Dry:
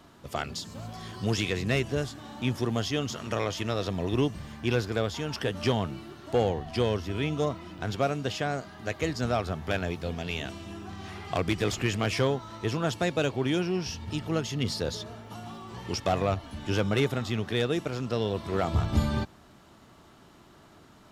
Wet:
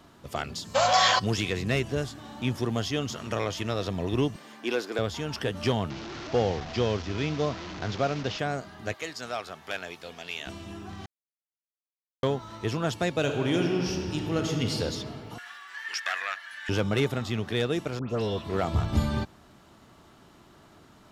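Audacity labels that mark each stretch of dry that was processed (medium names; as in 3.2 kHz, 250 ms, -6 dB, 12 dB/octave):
0.750000	1.190000	time-frequency box 460–7700 Hz +24 dB
4.360000	4.990000	high-pass 260 Hz 24 dB/octave
5.900000	8.390000	one-bit delta coder 32 kbps, step -32.5 dBFS
8.940000	10.470000	high-pass 1.1 kHz 6 dB/octave
11.060000	12.230000	mute
13.190000	14.760000	reverb throw, RT60 2.6 s, DRR 2.5 dB
15.380000	16.690000	resonant high-pass 1.7 kHz, resonance Q 7.9
17.990000	18.500000	phase dispersion highs, late by 110 ms, half as late at 2.1 kHz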